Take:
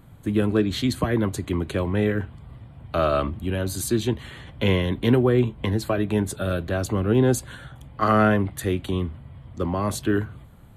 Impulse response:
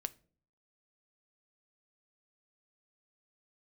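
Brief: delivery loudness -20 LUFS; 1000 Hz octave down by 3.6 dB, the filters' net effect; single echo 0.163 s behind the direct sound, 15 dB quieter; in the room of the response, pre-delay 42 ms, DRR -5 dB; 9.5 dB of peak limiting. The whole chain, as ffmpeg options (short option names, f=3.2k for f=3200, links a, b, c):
-filter_complex "[0:a]equalizer=f=1k:t=o:g=-5,alimiter=limit=-17dB:level=0:latency=1,aecho=1:1:163:0.178,asplit=2[a][b];[1:a]atrim=start_sample=2205,adelay=42[c];[b][c]afir=irnorm=-1:irlink=0,volume=6.5dB[d];[a][d]amix=inputs=2:normalize=0,volume=1.5dB"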